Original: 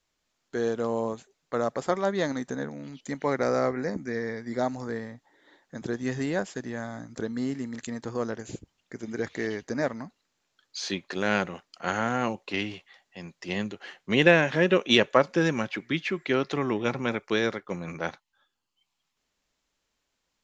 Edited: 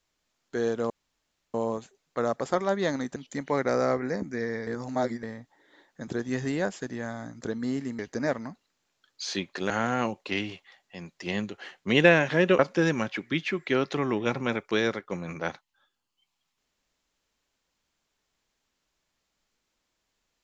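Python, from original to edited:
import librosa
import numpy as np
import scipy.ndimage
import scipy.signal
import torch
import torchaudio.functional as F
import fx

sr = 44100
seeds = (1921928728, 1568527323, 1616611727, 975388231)

y = fx.edit(x, sr, fx.insert_room_tone(at_s=0.9, length_s=0.64),
    fx.cut(start_s=2.52, length_s=0.38),
    fx.reverse_span(start_s=4.41, length_s=0.56),
    fx.cut(start_s=7.73, length_s=1.81),
    fx.cut(start_s=11.25, length_s=0.67),
    fx.cut(start_s=14.81, length_s=0.37), tone=tone)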